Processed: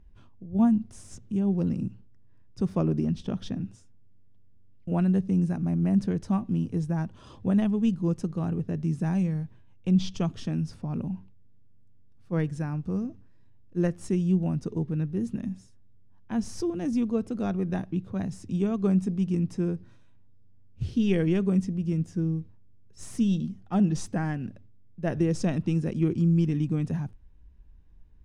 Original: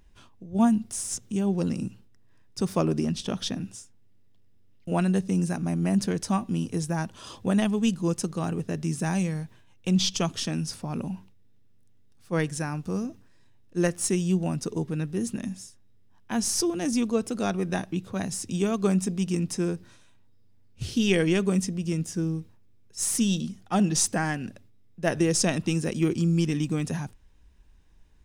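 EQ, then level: RIAA curve playback; low shelf 70 Hz -9.5 dB; -6.5 dB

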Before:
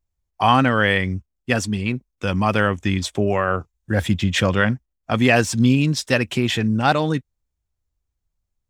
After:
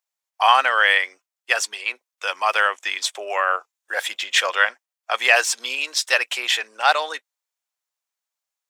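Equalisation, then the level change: Bessel high-pass 930 Hz, order 6; +4.5 dB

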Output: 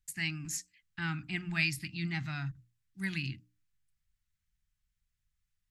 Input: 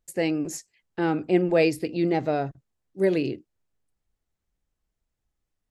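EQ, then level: Chebyshev band-stop 140–1700 Hz, order 2; notches 60/120/180/240/300 Hz; 0.0 dB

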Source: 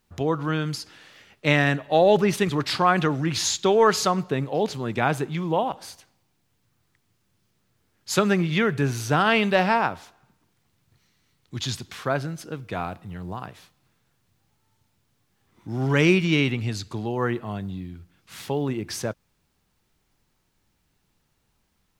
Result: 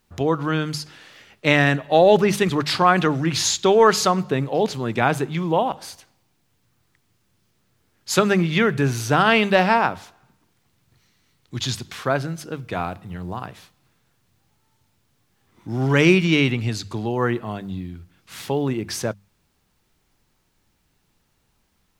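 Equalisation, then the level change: notches 50/100/150/200 Hz; +3.5 dB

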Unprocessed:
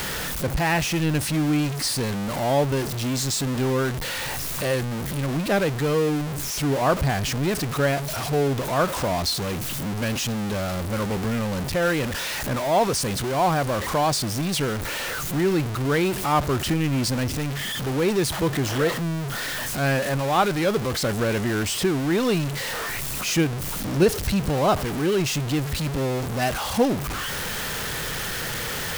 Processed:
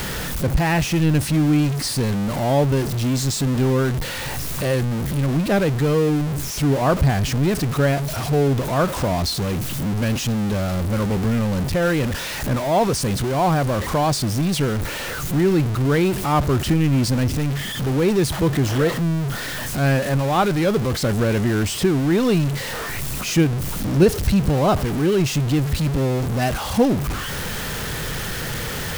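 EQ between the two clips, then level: low shelf 340 Hz +7.5 dB; 0.0 dB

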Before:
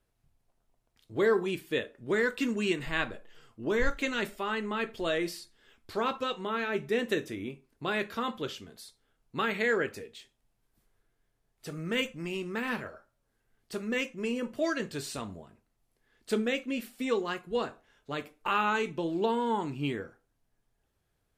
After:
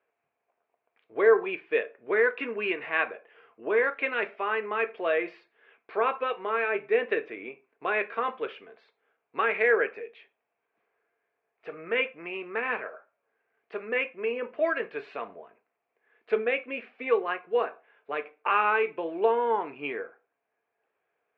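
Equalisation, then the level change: speaker cabinet 440–2500 Hz, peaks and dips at 450 Hz +9 dB, 700 Hz +7 dB, 1100 Hz +5 dB, 1600 Hz +4 dB, 2400 Hz +10 dB; 0.0 dB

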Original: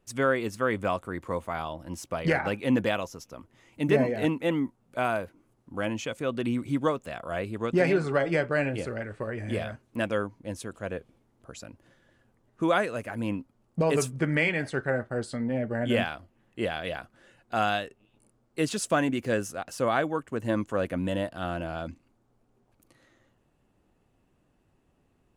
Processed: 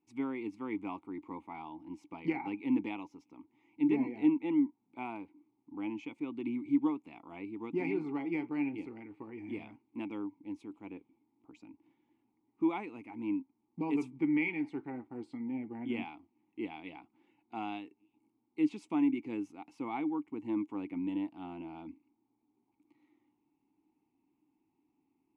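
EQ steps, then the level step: vowel filter u; +3.0 dB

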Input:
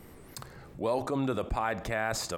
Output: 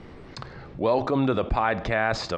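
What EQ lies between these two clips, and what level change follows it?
LPF 4800 Hz 24 dB/oct; +7.0 dB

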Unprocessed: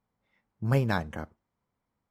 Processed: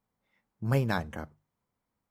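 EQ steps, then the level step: high shelf 7400 Hz +4.5 dB; notches 50/100/150 Hz; -1.5 dB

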